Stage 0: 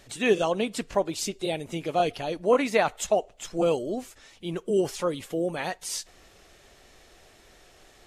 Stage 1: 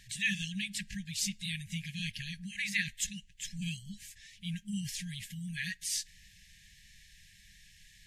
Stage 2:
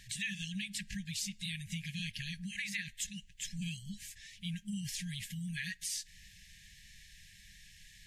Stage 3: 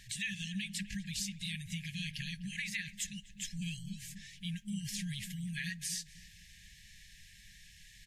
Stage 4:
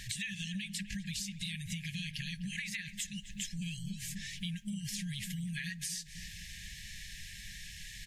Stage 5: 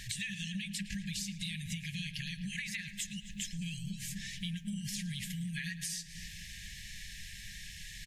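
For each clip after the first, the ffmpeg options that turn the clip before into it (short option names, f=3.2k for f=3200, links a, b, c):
-af "afftfilt=real='re*(1-between(b*sr/4096,210,1600))':imag='im*(1-between(b*sr/4096,210,1600))':win_size=4096:overlap=0.75,volume=-1.5dB"
-af "acompressor=threshold=-38dB:ratio=4,volume=1.5dB"
-filter_complex "[0:a]asplit=2[a][b];[b]adelay=252,lowpass=f=810:p=1,volume=-7.5dB,asplit=2[c][d];[d]adelay=252,lowpass=f=810:p=1,volume=0.3,asplit=2[e][f];[f]adelay=252,lowpass=f=810:p=1,volume=0.3,asplit=2[g][h];[h]adelay=252,lowpass=f=810:p=1,volume=0.3[i];[a][c][e][g][i]amix=inputs=5:normalize=0"
-af "acompressor=threshold=-47dB:ratio=6,volume=10dB"
-filter_complex "[0:a]asplit=2[a][b];[b]adelay=111,lowpass=f=3.3k:p=1,volume=-12.5dB,asplit=2[c][d];[d]adelay=111,lowpass=f=3.3k:p=1,volume=0.54,asplit=2[e][f];[f]adelay=111,lowpass=f=3.3k:p=1,volume=0.54,asplit=2[g][h];[h]adelay=111,lowpass=f=3.3k:p=1,volume=0.54,asplit=2[i][j];[j]adelay=111,lowpass=f=3.3k:p=1,volume=0.54,asplit=2[k][l];[l]adelay=111,lowpass=f=3.3k:p=1,volume=0.54[m];[a][c][e][g][i][k][m]amix=inputs=7:normalize=0"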